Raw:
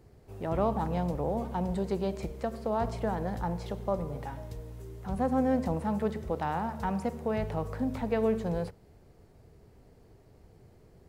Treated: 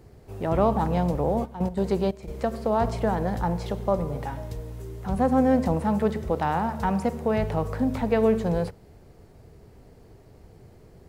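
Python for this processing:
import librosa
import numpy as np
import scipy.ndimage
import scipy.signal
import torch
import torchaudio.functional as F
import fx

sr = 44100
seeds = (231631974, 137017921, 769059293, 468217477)

y = fx.step_gate(x, sr, bpm=178, pattern='x..x.xxx', floor_db=-12.0, edge_ms=4.5, at=(1.44, 2.34), fade=0.02)
y = y * librosa.db_to_amplitude(6.5)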